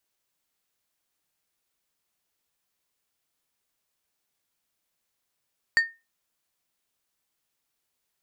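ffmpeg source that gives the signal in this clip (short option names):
-f lavfi -i "aevalsrc='0.224*pow(10,-3*t/0.25)*sin(2*PI*1830*t)+0.0631*pow(10,-3*t/0.132)*sin(2*PI*4575*t)+0.0178*pow(10,-3*t/0.095)*sin(2*PI*7320*t)+0.00501*pow(10,-3*t/0.081)*sin(2*PI*9150*t)+0.00141*pow(10,-3*t/0.067)*sin(2*PI*11895*t)':d=0.89:s=44100"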